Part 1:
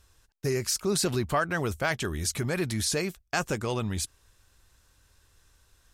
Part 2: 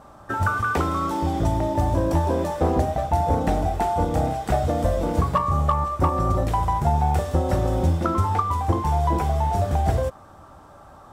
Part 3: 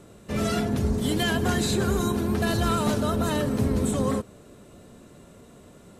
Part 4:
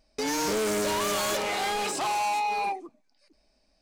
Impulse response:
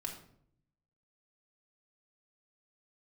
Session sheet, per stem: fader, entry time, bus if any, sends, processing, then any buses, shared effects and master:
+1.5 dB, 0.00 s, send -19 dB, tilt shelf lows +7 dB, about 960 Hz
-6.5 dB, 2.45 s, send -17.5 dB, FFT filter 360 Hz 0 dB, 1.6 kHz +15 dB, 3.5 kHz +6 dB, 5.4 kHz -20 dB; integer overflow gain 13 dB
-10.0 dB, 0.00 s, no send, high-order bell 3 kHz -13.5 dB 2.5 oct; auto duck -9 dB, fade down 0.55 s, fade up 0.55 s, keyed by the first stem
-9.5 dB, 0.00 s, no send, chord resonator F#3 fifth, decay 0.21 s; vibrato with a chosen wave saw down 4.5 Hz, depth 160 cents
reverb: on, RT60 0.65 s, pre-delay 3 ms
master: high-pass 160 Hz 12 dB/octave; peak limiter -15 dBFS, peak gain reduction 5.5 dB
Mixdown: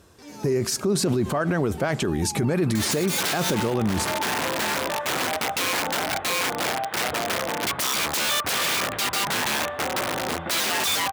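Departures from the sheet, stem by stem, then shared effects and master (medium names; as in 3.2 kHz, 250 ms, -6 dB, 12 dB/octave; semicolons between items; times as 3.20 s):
stem 1 +1.5 dB -> +11.5 dB; stem 2: send off; stem 4 -9.5 dB -> -2.5 dB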